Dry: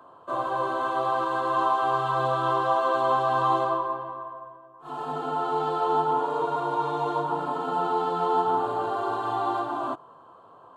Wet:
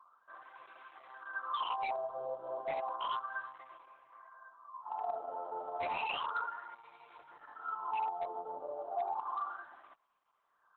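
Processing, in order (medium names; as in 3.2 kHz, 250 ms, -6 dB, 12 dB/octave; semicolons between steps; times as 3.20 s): wah-wah 0.32 Hz 570–2300 Hz, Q 11; 4.12–6.75 s: peaking EQ 1.3 kHz +8 dB 2.1 oct; wavefolder -28.5 dBFS; band-stop 5.4 kHz, Q 26; Opus 8 kbps 48 kHz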